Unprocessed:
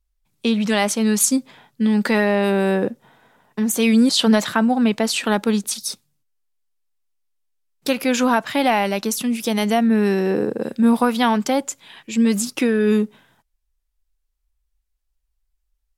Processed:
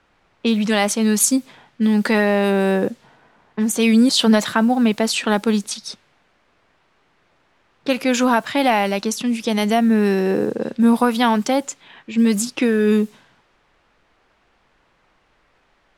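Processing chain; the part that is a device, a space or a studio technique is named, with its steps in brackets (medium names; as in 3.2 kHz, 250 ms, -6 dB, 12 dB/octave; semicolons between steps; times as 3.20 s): cassette deck with a dynamic noise filter (white noise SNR 32 dB; level-controlled noise filter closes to 1.8 kHz, open at -15 dBFS); trim +1 dB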